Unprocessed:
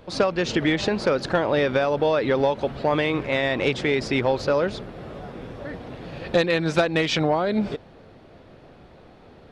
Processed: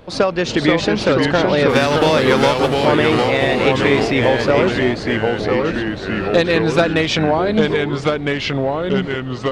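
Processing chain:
0:01.68–0:02.84: spectral envelope flattened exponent 0.6
delay with pitch and tempo change per echo 456 ms, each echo −2 semitones, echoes 3
level +5 dB

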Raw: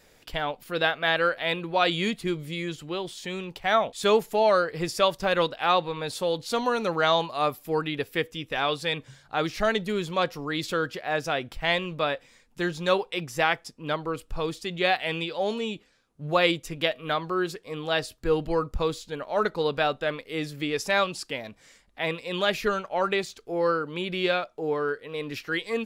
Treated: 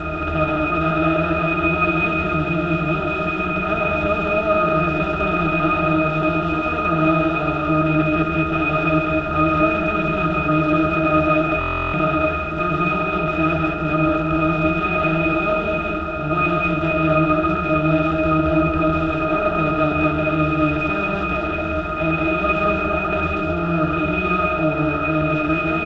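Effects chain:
compressor on every frequency bin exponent 0.2
parametric band 560 Hz −7.5 dB 0.97 octaves
hum removal 181.4 Hz, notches 26
steady tone 1,400 Hz −21 dBFS
resonances in every octave D#, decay 0.14 s
multi-tap delay 76/136/201/211/607 ms −16/−4/−5.5/−5.5/−14 dB
buffer that repeats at 0:11.59, samples 1,024, times 14
level +8 dB
G.722 64 kbit/s 16,000 Hz

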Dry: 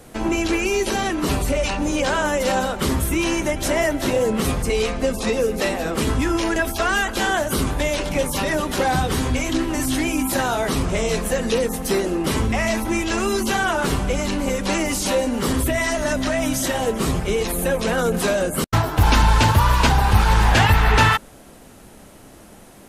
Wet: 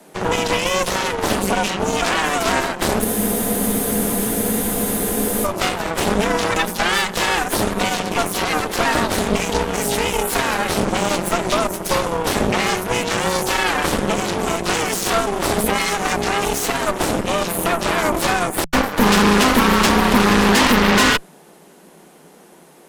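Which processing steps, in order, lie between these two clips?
frequency shifter +150 Hz
harmonic generator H 8 −10 dB, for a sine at −2 dBFS
frozen spectrum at 0:03.07, 2.38 s
level −2 dB

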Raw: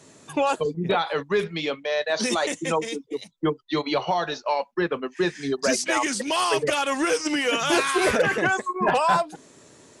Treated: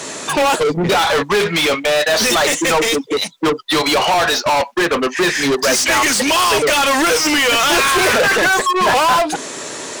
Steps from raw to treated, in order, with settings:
mid-hump overdrive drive 30 dB, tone 8,000 Hz, clips at −12 dBFS
level +3.5 dB

